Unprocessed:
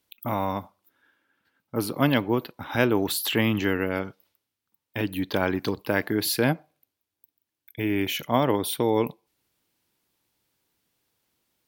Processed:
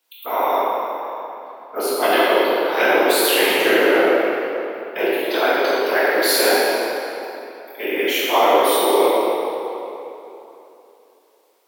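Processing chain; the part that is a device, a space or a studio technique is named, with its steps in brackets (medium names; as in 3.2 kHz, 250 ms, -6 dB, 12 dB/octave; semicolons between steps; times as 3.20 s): 3.57–5.05 s: bass shelf 430 Hz +10 dB; whispering ghost (whisper effect; high-pass 410 Hz 24 dB/octave; reverberation RT60 3.2 s, pre-delay 10 ms, DRR -9 dB); trim +2 dB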